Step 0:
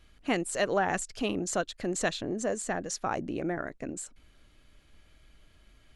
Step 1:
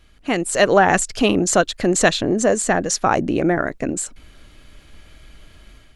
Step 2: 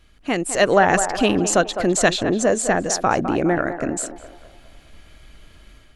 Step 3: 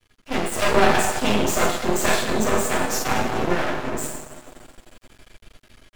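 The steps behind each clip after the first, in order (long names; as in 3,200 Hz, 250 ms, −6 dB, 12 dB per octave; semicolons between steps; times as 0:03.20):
automatic gain control gain up to 8 dB; level +6 dB
feedback echo with a band-pass in the loop 207 ms, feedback 52%, band-pass 810 Hz, level −8 dB; level −1.5 dB
lower of the sound and its delayed copy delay 8 ms; coupled-rooms reverb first 0.72 s, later 3.1 s, from −18 dB, DRR −5 dB; half-wave rectification; level −3 dB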